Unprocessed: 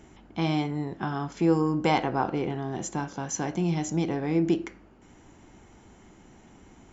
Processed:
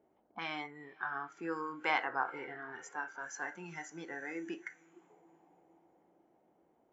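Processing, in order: echo that smears into a reverb 493 ms, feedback 56%, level -14.5 dB; auto-wah 510–1700 Hz, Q 2.1, up, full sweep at -30 dBFS; spectral noise reduction 13 dB; trim +2.5 dB

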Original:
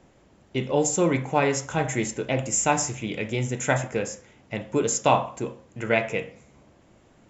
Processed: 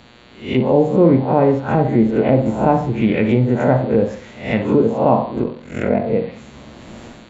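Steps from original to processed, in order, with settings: reverse spectral sustain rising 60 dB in 0.43 s; low-pass that closes with the level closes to 670 Hz, closed at -21.5 dBFS; peaking EQ 230 Hz +8 dB 0.25 oct; in parallel at 0 dB: peak limiter -16.5 dBFS, peak gain reduction 8 dB; on the sum: level rider gain up to 14.5 dB; mains buzz 120 Hz, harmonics 38, -49 dBFS -1 dB/octave; 5.42–6.06 s: ring modulator 22 Hz; on a send: flutter echo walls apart 10 m, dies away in 0.28 s; on the sum: trim -1.5 dB

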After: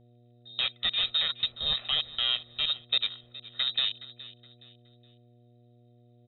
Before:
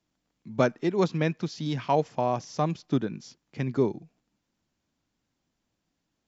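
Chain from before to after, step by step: peak limiter -18.5 dBFS, peak gain reduction 9.5 dB; Chebyshev shaper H 3 -20 dB, 7 -16 dB, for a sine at -18.5 dBFS; frequency inversion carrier 3.9 kHz; comb 1.6 ms, depth 61%; on a send: feedback delay 419 ms, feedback 33%, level -18 dB; on the sum: mains buzz 120 Hz, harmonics 6, -59 dBFS -6 dB/octave

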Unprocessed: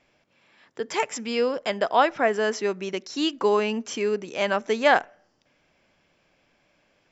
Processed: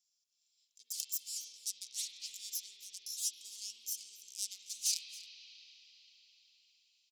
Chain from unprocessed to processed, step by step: self-modulated delay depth 0.42 ms; inverse Chebyshev high-pass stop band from 1.7 kHz, stop band 60 dB; delay 273 ms -19.5 dB; reverberation RT60 4.9 s, pre-delay 44 ms, DRR -0.5 dB; trim +1 dB

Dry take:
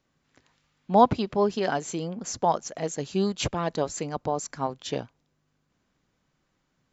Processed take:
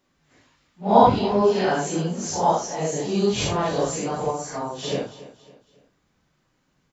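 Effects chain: phase randomisation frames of 200 ms; 4.30–4.78 s: compression, threshold -31 dBFS, peak gain reduction 7 dB; feedback delay 277 ms, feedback 40%, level -16.5 dB; trim +5 dB

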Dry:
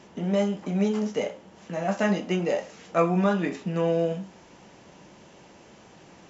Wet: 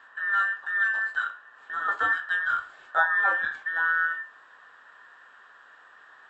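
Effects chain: every band turned upside down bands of 2 kHz; three-band isolator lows -18 dB, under 440 Hz, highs -17 dB, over 2.6 kHz

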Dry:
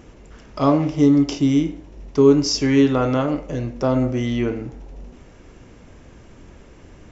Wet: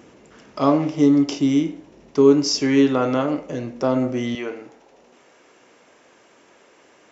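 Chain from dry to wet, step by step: high-pass 180 Hz 12 dB/octave, from 4.35 s 500 Hz

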